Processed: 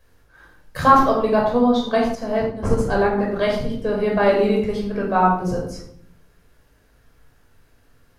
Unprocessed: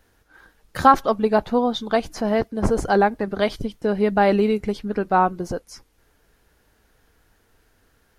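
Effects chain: reverberation RT60 0.70 s, pre-delay 14 ms, DRR -2 dB; 2.15–3.18 s: upward expansion 1.5:1, over -22 dBFS; trim -4.5 dB

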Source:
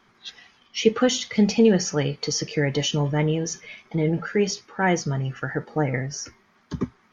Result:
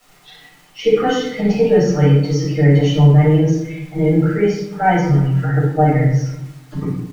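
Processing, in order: coarse spectral quantiser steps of 15 dB; low-pass 1.6 kHz 6 dB/octave; comb 6.6 ms, depth 89%; crackle 370 per s -38 dBFS; simulated room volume 210 m³, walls mixed, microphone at 6.4 m; trim -11.5 dB

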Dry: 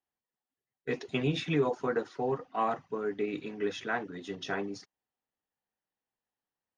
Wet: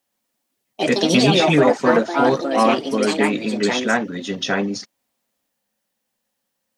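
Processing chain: treble shelf 2 kHz +10.5 dB; small resonant body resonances 220/540 Hz, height 12 dB, ringing for 50 ms; ever faster or slower copies 120 ms, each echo +4 st, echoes 2; trim +8.5 dB

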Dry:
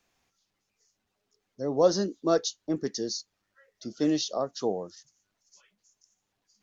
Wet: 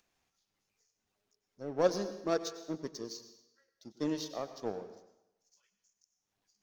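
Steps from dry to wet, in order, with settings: upward compressor, threshold -43 dBFS; power-law waveshaper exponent 1.4; reverberation RT60 0.85 s, pre-delay 90 ms, DRR 10.5 dB; trim -4 dB

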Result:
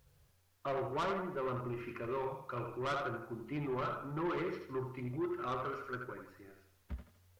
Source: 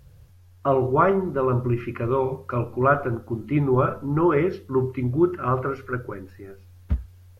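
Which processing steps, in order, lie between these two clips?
bass shelf 320 Hz -8.5 dB; thinning echo 81 ms, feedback 44%, high-pass 220 Hz, level -6 dB; saturation -22 dBFS, distortion -10 dB; bit crusher 11-bit; flange 0.54 Hz, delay 4.3 ms, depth 2 ms, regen -64%; trim -5.5 dB

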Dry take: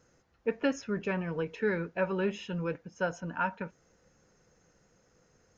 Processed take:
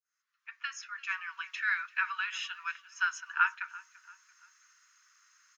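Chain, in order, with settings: fade-in on the opening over 1.58 s; steep high-pass 1.1 kHz 72 dB/octave; on a send: feedback delay 340 ms, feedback 40%, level -20 dB; on the sum: trim +7.5 dB

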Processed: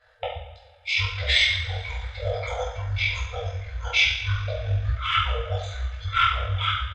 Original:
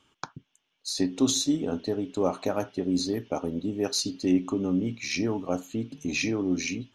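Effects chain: FFT band-reject 190–840 Hz; two-slope reverb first 0.66 s, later 2.5 s, from -18 dB, DRR -10 dB; pitch shift -10.5 st

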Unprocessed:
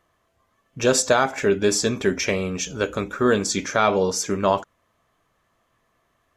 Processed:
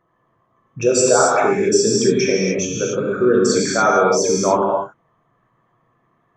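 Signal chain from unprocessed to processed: resonances exaggerated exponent 2; resonant low shelf 100 Hz -7.5 dB, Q 3; gated-style reverb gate 310 ms flat, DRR -4 dB

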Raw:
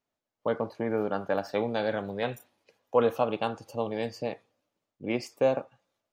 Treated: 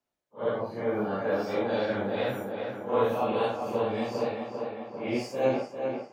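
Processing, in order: phase randomisation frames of 200 ms; tape echo 398 ms, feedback 73%, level -5 dB, low-pass 2.8 kHz

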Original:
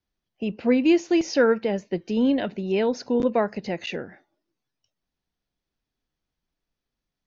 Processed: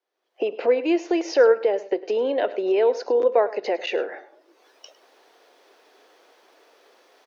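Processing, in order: recorder AGC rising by 37 dB/s; steep high-pass 410 Hz 36 dB/octave; in parallel at -3 dB: compression, threshold -32 dBFS, peak gain reduction 15.5 dB; on the sum: tilt EQ -3.5 dB/octave; delay 104 ms -17.5 dB; on a send at -20 dB: reverberation RT60 0.80 s, pre-delay 3 ms

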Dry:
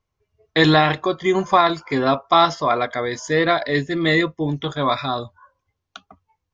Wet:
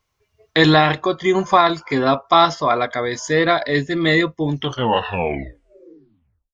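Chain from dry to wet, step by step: tape stop on the ending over 1.99 s; tape noise reduction on one side only encoder only; trim +1.5 dB

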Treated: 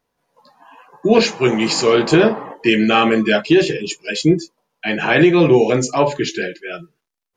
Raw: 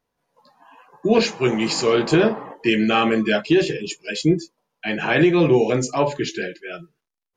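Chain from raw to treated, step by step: bass shelf 150 Hz -3 dB; trim +4.5 dB

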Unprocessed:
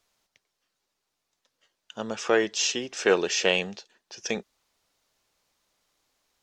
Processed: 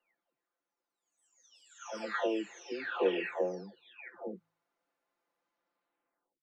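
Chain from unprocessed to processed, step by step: delay that grows with frequency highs early, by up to 997 ms; three-band isolator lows -22 dB, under 210 Hz, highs -18 dB, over 2.1 kHz; de-hum 54.17 Hz, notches 3; trim -3 dB

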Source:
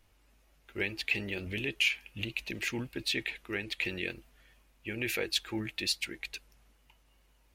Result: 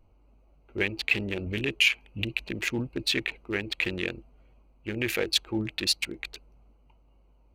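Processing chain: local Wiener filter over 25 samples; trim +6.5 dB

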